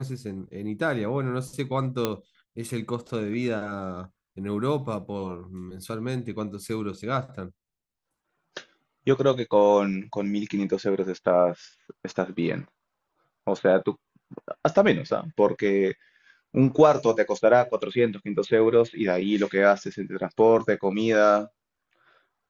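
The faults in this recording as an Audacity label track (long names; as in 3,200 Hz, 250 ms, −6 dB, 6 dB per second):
2.050000	2.050000	click −10 dBFS
10.040000	10.040000	drop-out 3.7 ms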